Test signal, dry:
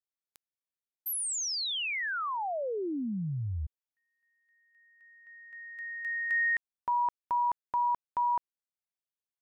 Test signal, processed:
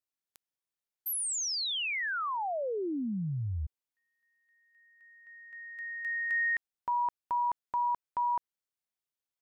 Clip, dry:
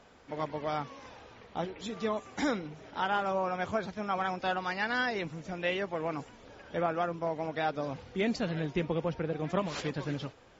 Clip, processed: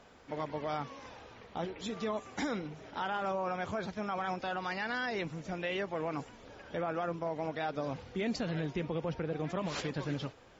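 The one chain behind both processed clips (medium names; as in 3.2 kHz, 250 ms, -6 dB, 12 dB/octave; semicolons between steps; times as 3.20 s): peak limiter -26 dBFS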